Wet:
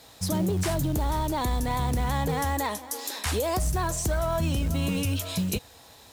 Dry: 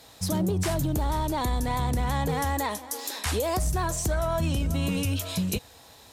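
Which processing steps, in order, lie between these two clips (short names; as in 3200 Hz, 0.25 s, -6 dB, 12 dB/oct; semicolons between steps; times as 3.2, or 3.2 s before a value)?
companded quantiser 6-bit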